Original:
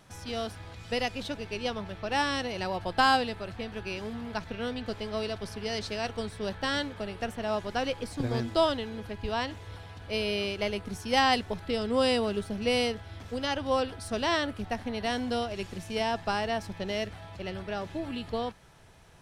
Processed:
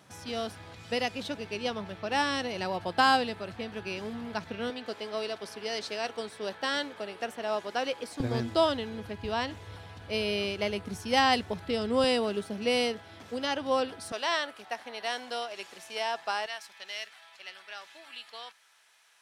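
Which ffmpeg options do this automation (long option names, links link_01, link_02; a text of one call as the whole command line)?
ffmpeg -i in.wav -af "asetnsamples=nb_out_samples=441:pad=0,asendcmd='4.7 highpass f 320;8.2 highpass f 83;12.04 highpass f 190;14.12 highpass f 650;16.46 highpass f 1500',highpass=120" out.wav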